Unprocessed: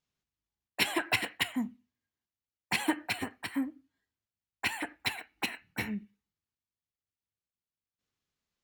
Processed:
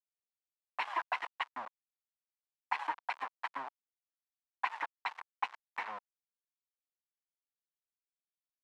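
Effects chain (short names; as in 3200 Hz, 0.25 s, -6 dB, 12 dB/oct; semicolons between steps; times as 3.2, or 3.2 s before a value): octaver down 1 oct, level -1 dB; in parallel at +1 dB: limiter -22 dBFS, peak gain reduction 8.5 dB; on the sum: compressor 2.5:1, threshold -29 dBFS, peak gain reduction 7.5 dB; sample gate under -31 dBFS; ladder band-pass 1100 Hz, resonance 60%; gain +8.5 dB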